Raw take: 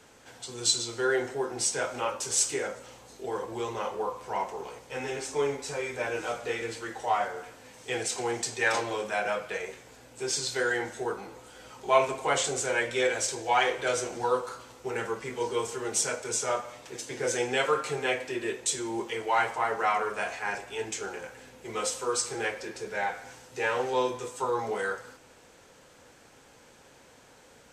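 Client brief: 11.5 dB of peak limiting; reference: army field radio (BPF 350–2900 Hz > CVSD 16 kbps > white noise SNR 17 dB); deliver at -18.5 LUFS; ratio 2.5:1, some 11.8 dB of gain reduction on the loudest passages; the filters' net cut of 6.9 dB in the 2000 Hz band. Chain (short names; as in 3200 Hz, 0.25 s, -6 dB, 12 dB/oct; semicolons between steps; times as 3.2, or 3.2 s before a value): bell 2000 Hz -8.5 dB; compressor 2.5:1, threshold -35 dBFS; limiter -31 dBFS; BPF 350–2900 Hz; CVSD 16 kbps; white noise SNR 17 dB; gain +24.5 dB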